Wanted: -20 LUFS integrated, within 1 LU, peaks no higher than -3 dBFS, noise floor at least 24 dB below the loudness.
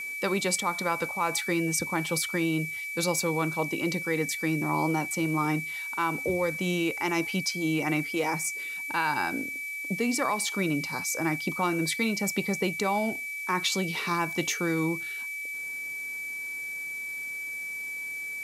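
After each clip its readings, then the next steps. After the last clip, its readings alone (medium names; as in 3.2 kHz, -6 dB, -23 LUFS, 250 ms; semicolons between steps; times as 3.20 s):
steady tone 2.3 kHz; tone level -33 dBFS; noise floor -36 dBFS; noise floor target -53 dBFS; loudness -28.5 LUFS; peak level -13.5 dBFS; loudness target -20.0 LUFS
-> band-stop 2.3 kHz, Q 30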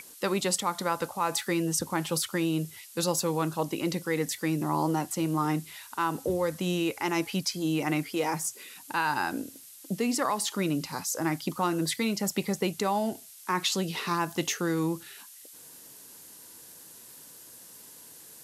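steady tone not found; noise floor -50 dBFS; noise floor target -54 dBFS
-> noise reduction 6 dB, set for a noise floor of -50 dBFS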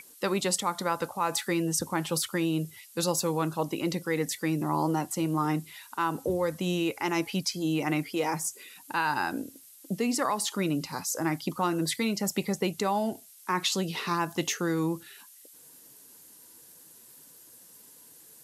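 noise floor -53 dBFS; noise floor target -54 dBFS
-> noise reduction 6 dB, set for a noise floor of -53 dBFS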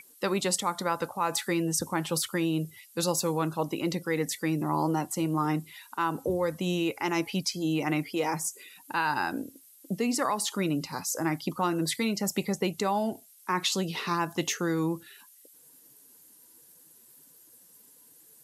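noise floor -57 dBFS; loudness -29.5 LUFS; peak level -14.0 dBFS; loudness target -20.0 LUFS
-> trim +9.5 dB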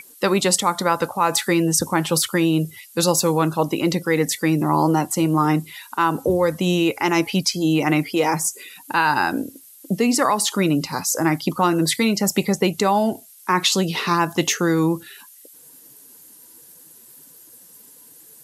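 loudness -20.0 LUFS; peak level -4.5 dBFS; noise floor -47 dBFS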